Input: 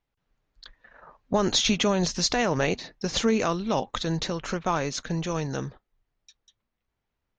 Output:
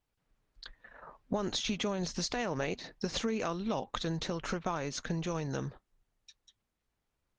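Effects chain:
0:02.17–0:03.70: dynamic equaliser 100 Hz, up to −3 dB, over −42 dBFS, Q 1.5
downward compressor 4 to 1, threshold −31 dBFS, peak gain reduction 11 dB
Opus 32 kbit/s 48,000 Hz

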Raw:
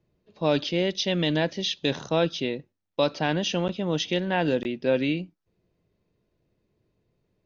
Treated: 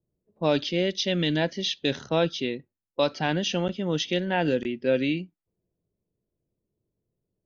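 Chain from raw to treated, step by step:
noise reduction from a noise print of the clip's start 9 dB
low-pass that shuts in the quiet parts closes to 640 Hz, open at −23.5 dBFS

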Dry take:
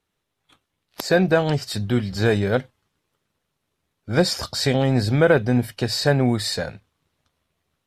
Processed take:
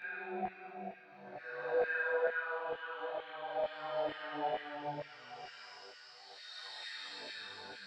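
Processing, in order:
high-pass filter 51 Hz
hum removal 79.87 Hz, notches 10
in parallel at −1 dB: downward compressor, threshold −24 dBFS, peak gain reduction 13 dB
on the sum: brickwall limiter −13 dBFS, peak gain reduction 10.5 dB
extreme stretch with random phases 13×, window 0.10 s, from 0:01.19
resonators tuned to a chord G2 major, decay 0.77 s
auto-filter high-pass saw down 2.2 Hz 660–2,000 Hz
head-to-tape spacing loss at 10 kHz 39 dB
delay with a high-pass on its return 230 ms, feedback 85%, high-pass 2,900 Hz, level −8 dB
micro pitch shift up and down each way 21 cents
level +13 dB

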